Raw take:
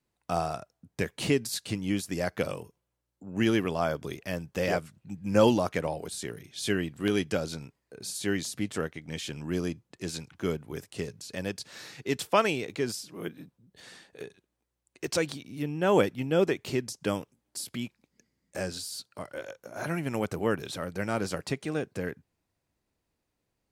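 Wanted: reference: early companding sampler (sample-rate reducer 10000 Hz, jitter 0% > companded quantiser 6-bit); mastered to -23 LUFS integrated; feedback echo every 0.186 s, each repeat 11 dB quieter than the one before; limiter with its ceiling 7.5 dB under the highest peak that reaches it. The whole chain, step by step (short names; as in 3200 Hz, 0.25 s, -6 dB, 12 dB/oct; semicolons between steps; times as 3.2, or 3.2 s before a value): limiter -17 dBFS; feedback echo 0.186 s, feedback 28%, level -11 dB; sample-rate reducer 10000 Hz, jitter 0%; companded quantiser 6-bit; gain +9.5 dB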